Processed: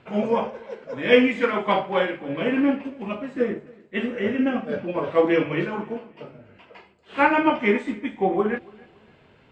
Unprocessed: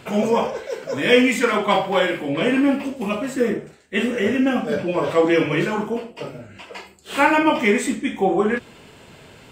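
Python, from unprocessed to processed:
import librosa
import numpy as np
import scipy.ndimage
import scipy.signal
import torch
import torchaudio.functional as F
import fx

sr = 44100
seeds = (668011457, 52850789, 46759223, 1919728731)

y = scipy.signal.sosfilt(scipy.signal.butter(2, 2900.0, 'lowpass', fs=sr, output='sos'), x)
y = fx.echo_feedback(y, sr, ms=281, feedback_pct=34, wet_db=-18.0)
y = fx.upward_expand(y, sr, threshold_db=-30.0, expansion=1.5)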